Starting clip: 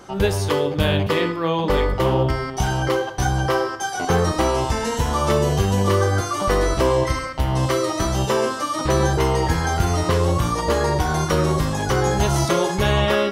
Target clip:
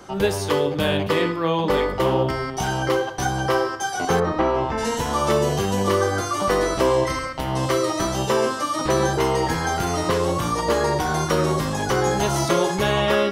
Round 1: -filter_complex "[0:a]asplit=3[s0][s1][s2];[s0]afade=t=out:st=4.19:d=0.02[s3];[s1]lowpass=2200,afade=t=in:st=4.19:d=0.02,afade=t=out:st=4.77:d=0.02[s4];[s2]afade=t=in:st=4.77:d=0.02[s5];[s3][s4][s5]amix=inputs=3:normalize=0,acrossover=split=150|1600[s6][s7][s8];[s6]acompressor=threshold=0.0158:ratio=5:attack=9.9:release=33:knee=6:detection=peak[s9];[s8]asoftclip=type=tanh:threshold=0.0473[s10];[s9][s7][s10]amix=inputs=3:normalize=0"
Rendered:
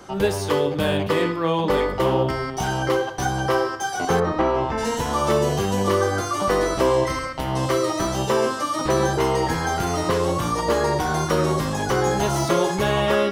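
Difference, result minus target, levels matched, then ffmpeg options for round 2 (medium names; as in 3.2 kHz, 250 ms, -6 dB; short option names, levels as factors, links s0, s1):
saturation: distortion +10 dB
-filter_complex "[0:a]asplit=3[s0][s1][s2];[s0]afade=t=out:st=4.19:d=0.02[s3];[s1]lowpass=2200,afade=t=in:st=4.19:d=0.02,afade=t=out:st=4.77:d=0.02[s4];[s2]afade=t=in:st=4.77:d=0.02[s5];[s3][s4][s5]amix=inputs=3:normalize=0,acrossover=split=150|1600[s6][s7][s8];[s6]acompressor=threshold=0.0158:ratio=5:attack=9.9:release=33:knee=6:detection=peak[s9];[s8]asoftclip=type=tanh:threshold=0.119[s10];[s9][s7][s10]amix=inputs=3:normalize=0"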